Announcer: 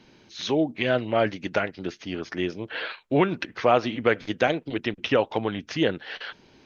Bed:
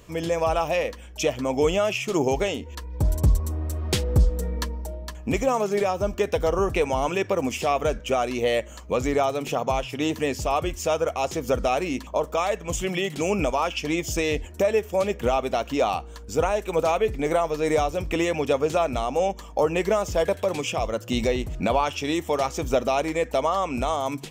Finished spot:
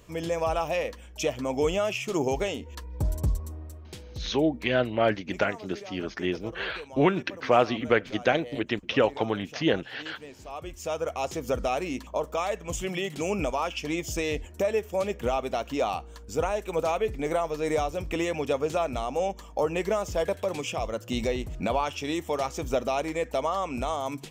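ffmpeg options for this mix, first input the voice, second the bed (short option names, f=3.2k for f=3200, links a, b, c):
-filter_complex "[0:a]adelay=3850,volume=-1dB[a];[1:a]volume=11dB,afade=t=out:st=2.92:d=0.99:silence=0.16788,afade=t=in:st=10.43:d=0.74:silence=0.177828[b];[a][b]amix=inputs=2:normalize=0"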